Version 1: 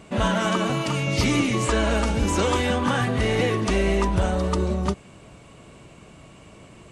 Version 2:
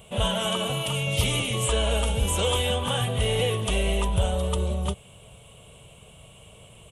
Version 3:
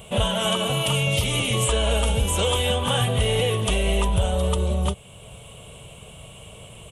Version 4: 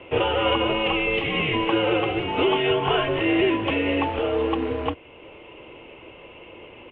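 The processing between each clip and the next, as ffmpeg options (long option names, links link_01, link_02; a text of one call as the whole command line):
ffmpeg -i in.wav -af "firequalizer=gain_entry='entry(110,0);entry(310,-17);entry(450,-1);entry(1300,-8);entry(1800,-11);entry(3200,8);entry(4600,-12);entry(10000,12)':delay=0.05:min_phase=1" out.wav
ffmpeg -i in.wav -af "alimiter=limit=-18dB:level=0:latency=1:release=467,volume=6.5dB" out.wav
ffmpeg -i in.wav -af "acrusher=bits=4:mode=log:mix=0:aa=0.000001,highpass=frequency=240:width_type=q:width=0.5412,highpass=frequency=240:width_type=q:width=1.307,lowpass=frequency=2800:width_type=q:width=0.5176,lowpass=frequency=2800:width_type=q:width=0.7071,lowpass=frequency=2800:width_type=q:width=1.932,afreqshift=-110,volume=4dB" out.wav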